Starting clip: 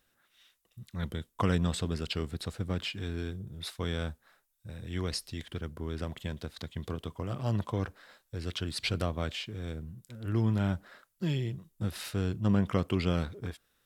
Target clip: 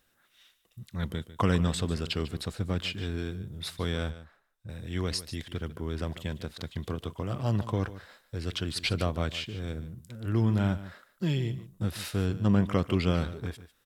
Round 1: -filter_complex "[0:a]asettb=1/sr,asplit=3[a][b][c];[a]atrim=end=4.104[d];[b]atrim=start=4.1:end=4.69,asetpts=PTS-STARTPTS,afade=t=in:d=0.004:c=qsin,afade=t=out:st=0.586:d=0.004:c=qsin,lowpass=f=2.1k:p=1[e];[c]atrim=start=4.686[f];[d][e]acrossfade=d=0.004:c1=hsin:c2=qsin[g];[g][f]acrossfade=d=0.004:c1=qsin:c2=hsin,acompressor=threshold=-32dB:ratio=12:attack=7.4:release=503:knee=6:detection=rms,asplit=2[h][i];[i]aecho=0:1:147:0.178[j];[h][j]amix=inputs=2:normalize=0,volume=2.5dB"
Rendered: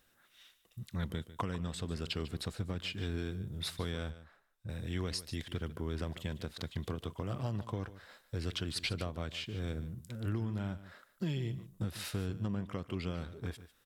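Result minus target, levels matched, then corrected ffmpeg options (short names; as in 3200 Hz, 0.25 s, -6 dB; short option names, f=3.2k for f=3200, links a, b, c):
compressor: peak gain reduction +14.5 dB
-filter_complex "[0:a]asettb=1/sr,asplit=3[a][b][c];[a]atrim=end=4.104[d];[b]atrim=start=4.1:end=4.69,asetpts=PTS-STARTPTS,afade=t=in:d=0.004:c=qsin,afade=t=out:st=0.586:d=0.004:c=qsin,lowpass=f=2.1k:p=1[e];[c]atrim=start=4.686[f];[d][e]acrossfade=d=0.004:c1=hsin:c2=qsin[g];[g][f]acrossfade=d=0.004:c1=qsin:c2=hsin,asplit=2[h][i];[i]aecho=0:1:147:0.178[j];[h][j]amix=inputs=2:normalize=0,volume=2.5dB"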